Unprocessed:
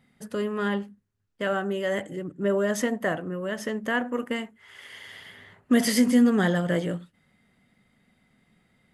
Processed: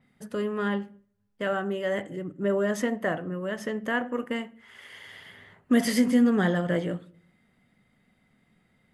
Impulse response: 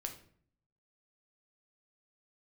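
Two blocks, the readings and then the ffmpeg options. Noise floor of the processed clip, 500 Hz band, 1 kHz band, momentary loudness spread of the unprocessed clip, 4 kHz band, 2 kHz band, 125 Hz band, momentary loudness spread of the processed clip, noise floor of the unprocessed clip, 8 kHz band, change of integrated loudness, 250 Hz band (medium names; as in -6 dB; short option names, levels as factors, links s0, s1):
-69 dBFS, -1.0 dB, -1.0 dB, 21 LU, -3.5 dB, -1.5 dB, -1.0 dB, 21 LU, -69 dBFS, -5.5 dB, -1.5 dB, -1.5 dB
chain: -filter_complex "[0:a]asplit=2[s0][s1];[1:a]atrim=start_sample=2205,lowpass=3500[s2];[s1][s2]afir=irnorm=-1:irlink=0,volume=0.447[s3];[s0][s3]amix=inputs=2:normalize=0,adynamicequalizer=threshold=0.00501:dfrequency=5700:dqfactor=0.7:tfrequency=5700:tqfactor=0.7:attack=5:release=100:ratio=0.375:range=2.5:mode=cutabove:tftype=highshelf,volume=0.668"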